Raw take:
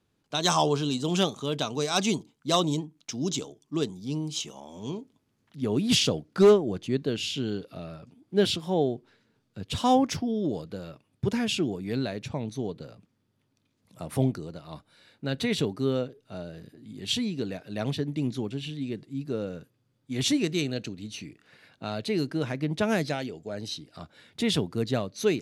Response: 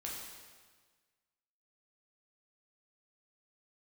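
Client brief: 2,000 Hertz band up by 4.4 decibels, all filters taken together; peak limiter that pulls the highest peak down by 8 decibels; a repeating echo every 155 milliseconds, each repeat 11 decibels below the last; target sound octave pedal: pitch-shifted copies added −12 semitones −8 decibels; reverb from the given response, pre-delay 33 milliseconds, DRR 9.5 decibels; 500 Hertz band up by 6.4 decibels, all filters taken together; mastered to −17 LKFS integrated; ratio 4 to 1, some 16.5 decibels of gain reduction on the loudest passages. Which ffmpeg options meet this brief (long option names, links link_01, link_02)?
-filter_complex "[0:a]equalizer=frequency=500:width_type=o:gain=8,equalizer=frequency=2000:width_type=o:gain=5.5,acompressor=threshold=-28dB:ratio=4,alimiter=limit=-22.5dB:level=0:latency=1,aecho=1:1:155|310|465:0.282|0.0789|0.0221,asplit=2[link_01][link_02];[1:a]atrim=start_sample=2205,adelay=33[link_03];[link_02][link_03]afir=irnorm=-1:irlink=0,volume=-9.5dB[link_04];[link_01][link_04]amix=inputs=2:normalize=0,asplit=2[link_05][link_06];[link_06]asetrate=22050,aresample=44100,atempo=2,volume=-8dB[link_07];[link_05][link_07]amix=inputs=2:normalize=0,volume=16dB"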